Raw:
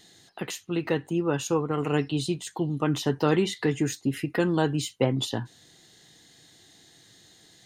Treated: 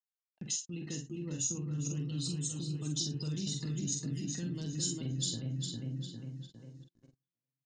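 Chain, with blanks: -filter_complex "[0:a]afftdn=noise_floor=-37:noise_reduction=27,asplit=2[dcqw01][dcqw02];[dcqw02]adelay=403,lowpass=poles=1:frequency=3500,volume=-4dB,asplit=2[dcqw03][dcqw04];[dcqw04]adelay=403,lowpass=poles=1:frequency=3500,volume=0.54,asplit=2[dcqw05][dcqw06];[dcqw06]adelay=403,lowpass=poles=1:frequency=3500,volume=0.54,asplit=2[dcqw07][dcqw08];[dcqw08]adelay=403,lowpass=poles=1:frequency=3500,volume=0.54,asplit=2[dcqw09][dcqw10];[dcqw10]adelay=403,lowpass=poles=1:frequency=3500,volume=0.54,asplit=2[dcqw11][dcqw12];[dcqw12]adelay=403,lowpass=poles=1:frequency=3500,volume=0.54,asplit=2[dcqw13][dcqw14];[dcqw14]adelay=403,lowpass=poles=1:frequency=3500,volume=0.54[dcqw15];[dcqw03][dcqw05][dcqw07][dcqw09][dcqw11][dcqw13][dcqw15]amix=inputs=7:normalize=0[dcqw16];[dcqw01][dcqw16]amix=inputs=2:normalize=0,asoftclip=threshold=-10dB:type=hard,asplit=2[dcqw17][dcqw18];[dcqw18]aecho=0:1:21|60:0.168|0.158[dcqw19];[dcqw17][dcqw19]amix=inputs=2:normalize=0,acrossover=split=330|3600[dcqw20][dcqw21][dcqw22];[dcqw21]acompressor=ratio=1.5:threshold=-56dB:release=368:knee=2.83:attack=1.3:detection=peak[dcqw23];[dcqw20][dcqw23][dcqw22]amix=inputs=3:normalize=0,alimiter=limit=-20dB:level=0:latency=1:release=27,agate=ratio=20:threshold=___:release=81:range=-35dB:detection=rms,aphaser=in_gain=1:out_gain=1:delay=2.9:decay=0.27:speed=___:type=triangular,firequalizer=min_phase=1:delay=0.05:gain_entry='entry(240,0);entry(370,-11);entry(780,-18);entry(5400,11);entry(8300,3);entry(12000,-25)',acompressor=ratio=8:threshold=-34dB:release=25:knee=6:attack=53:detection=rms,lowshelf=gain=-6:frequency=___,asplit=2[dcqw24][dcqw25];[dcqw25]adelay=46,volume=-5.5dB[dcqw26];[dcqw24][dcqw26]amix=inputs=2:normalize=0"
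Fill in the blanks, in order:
-46dB, 0.5, 460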